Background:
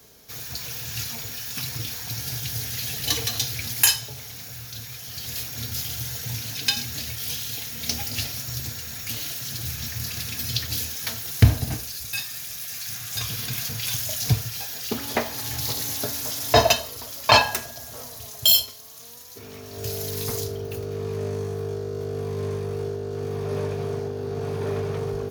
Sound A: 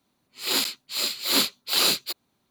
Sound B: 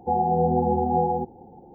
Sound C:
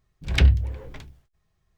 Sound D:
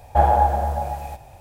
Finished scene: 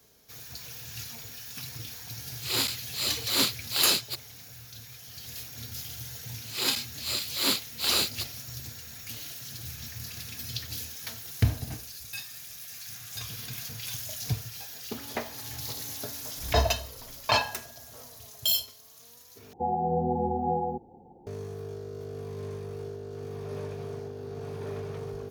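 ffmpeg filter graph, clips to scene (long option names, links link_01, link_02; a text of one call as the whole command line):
ffmpeg -i bed.wav -i cue0.wav -i cue1.wav -i cue2.wav -filter_complex "[1:a]asplit=2[link_01][link_02];[0:a]volume=-9dB,asplit=2[link_03][link_04];[link_03]atrim=end=19.534[link_05];[2:a]atrim=end=1.74,asetpts=PTS-STARTPTS,volume=-6dB[link_06];[link_04]atrim=start=21.266[link_07];[link_01]atrim=end=2.5,asetpts=PTS-STARTPTS,volume=-3.5dB,afade=type=in:duration=0.004:curve=hsin,afade=type=out:start_time=2.496:duration=0.004:curve=hsin,adelay=2030[link_08];[link_02]atrim=end=2.5,asetpts=PTS-STARTPTS,volume=-4.5dB,afade=type=in:duration=0.004:curve=hsin,afade=type=out:start_time=2.496:duration=0.004:curve=hsin,adelay=6110[link_09];[3:a]atrim=end=1.77,asetpts=PTS-STARTPTS,volume=-12.5dB,afade=type=in:duration=0.004:curve=hsin,afade=type=out:start_time=1.766:duration=0.004:curve=hsin,adelay=16140[link_10];[link_05][link_06]acrossfade=duration=0.004:curve1=hsin:curve2=hsin[link_11];[link_11][link_07]acrossfade=duration=0.004:curve1=hsin:curve2=hsin[link_12];[link_12][link_08][link_09][link_10]amix=inputs=4:normalize=0" out.wav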